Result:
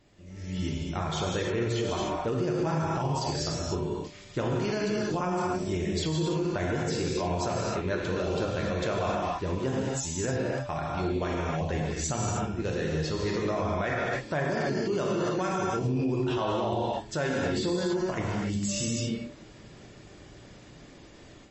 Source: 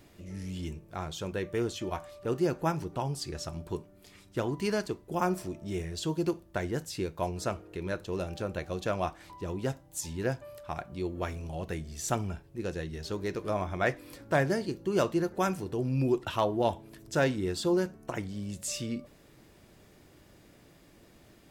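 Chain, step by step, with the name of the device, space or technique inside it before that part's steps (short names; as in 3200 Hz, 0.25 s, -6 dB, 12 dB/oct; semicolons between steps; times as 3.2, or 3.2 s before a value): 14.8–15.98 low shelf 72 Hz -3.5 dB; non-linear reverb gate 0.33 s flat, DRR -2.5 dB; low-bitrate web radio (AGC gain up to 10 dB; limiter -14 dBFS, peak gain reduction 11 dB; gain -6 dB; MP3 32 kbps 32000 Hz)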